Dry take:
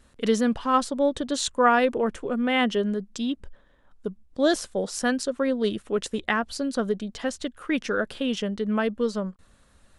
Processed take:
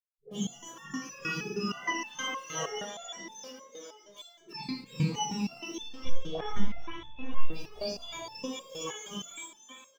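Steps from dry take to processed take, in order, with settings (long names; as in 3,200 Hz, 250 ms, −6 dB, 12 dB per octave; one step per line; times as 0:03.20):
frequency axis turned over on the octave scale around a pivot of 1,200 Hz
centre clipping without the shift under −44.5 dBFS
all-pass dispersion highs, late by 125 ms, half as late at 700 Hz
0:02.77–0:03.24: low-pass filter 2,600 Hz 6 dB per octave
0:05.77–0:07.47: linear-prediction vocoder at 8 kHz pitch kept
echo with shifted repeats 412 ms, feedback 46%, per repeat +55 Hz, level −9 dB
convolution reverb RT60 0.80 s, pre-delay 18 ms, DRR −1.5 dB
step-sequenced resonator 6.4 Hz 160–880 Hz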